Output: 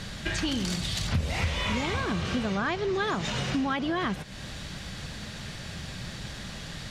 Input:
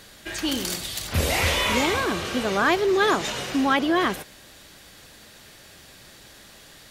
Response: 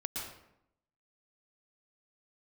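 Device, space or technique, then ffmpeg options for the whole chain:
jukebox: -filter_complex "[0:a]lowpass=6500,lowshelf=frequency=240:width_type=q:width=1.5:gain=8.5,acompressor=threshold=-35dB:ratio=5,asettb=1/sr,asplit=3[link_01][link_02][link_03];[link_01]atrim=end=2.554[link_04];[link_02]atrim=start=2.55:end=2.95,asetpts=PTS-STARTPTS,afade=type=in:duration=0.004:curve=qsin,afade=type=out:start_time=0.396:duration=0.004:curve=qsin,lowpass=8300[link_05];[link_03]atrim=start=2.946[link_06];[link_04][link_05]acrossfade=duration=0.004:curve1=hsin:curve2=qsin[link_07];[link_07][link_06]acrossfade=duration=0.004:curve1=qsin:curve2=hsin,volume=7.5dB"

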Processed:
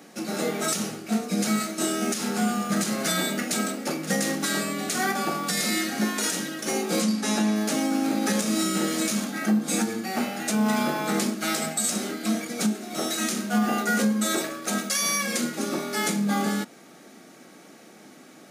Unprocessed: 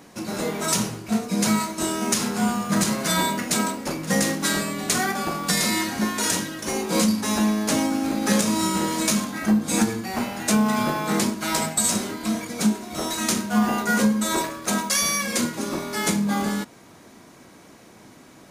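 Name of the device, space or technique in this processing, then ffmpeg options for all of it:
PA system with an anti-feedback notch: -filter_complex "[0:a]highpass=frequency=170:width=0.5412,highpass=frequency=170:width=1.3066,asuperstop=centerf=1000:order=12:qfactor=6.9,alimiter=limit=-14dB:level=0:latency=1:release=172,asettb=1/sr,asplit=3[link_01][link_02][link_03];[link_01]atrim=end=7.024[link_04];[link_02]atrim=start=7.02:end=7.56,asetpts=PTS-STARTPTS,afade=type=in:duration=0.004:curve=qsin,afade=type=out:start_time=0.536:duration=0.004:curve=qsin,lowpass=10000[link_05];[link_03]atrim=start=7.556[link_06];[link_04][link_05]acrossfade=duration=0.004:curve1=hsin:curve2=qsin[link_07];[link_07][link_06]acrossfade=duration=0.004:curve1=qsin:curve2=hsin"

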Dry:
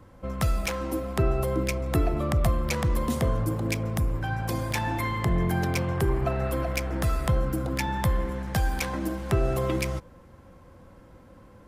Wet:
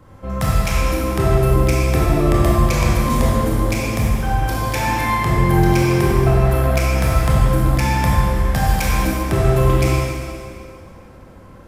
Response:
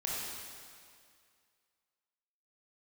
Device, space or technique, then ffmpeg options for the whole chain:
stairwell: -filter_complex "[1:a]atrim=start_sample=2205[link_01];[0:a][link_01]afir=irnorm=-1:irlink=0,asettb=1/sr,asplit=3[link_02][link_03][link_04];[link_02]atrim=end=8.674[link_05];[link_03]atrim=start=8.67:end=9.23,asetpts=PTS-STARTPTS,afade=type=in:duration=0.004:curve=qsin,afade=type=out:start_time=0.556:duration=0.004:curve=qsin,highshelf=frequency=9700:gain=5[link_06];[link_04]atrim=start=9.226[link_07];[link_05][link_06]acrossfade=duration=0.004:curve1=hsin:curve2=qsin[link_08];[link_08][link_07]acrossfade=duration=0.004:curve1=qsin:curve2=hsin,volume=5.5dB"

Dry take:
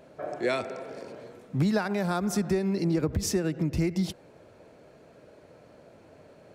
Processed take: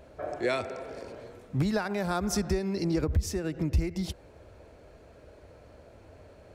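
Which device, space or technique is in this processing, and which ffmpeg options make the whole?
car stereo with a boomy subwoofer: -filter_complex "[0:a]lowshelf=frequency=100:width_type=q:width=1.5:gain=13.5,alimiter=limit=-17dB:level=0:latency=1:release=457,asettb=1/sr,asplit=3[link_01][link_02][link_03];[link_01]atrim=end=2.294[link_04];[link_02]atrim=start=2.29:end=3.05,asetpts=PTS-STARTPTS,afade=type=in:duration=0.004:curve=qsin,afade=type=out:start_time=0.756:duration=0.004:curve=qsin,equalizer=frequency=5300:width=2.6:gain=5.5[link_05];[link_03]atrim=start=3.046[link_06];[link_04][link_05]acrossfade=duration=0.004:curve1=hsin:curve2=qsin[link_07];[link_07][link_06]acrossfade=duration=0.004:curve1=qsin:curve2=hsin"

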